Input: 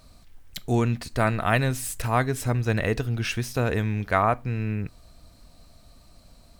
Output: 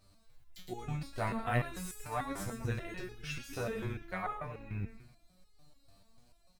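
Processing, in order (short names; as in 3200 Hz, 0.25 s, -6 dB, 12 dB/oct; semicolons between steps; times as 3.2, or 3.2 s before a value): frequency-shifting echo 0.113 s, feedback 38%, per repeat -82 Hz, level -6 dB; stepped resonator 6.8 Hz 98–420 Hz; gain -1.5 dB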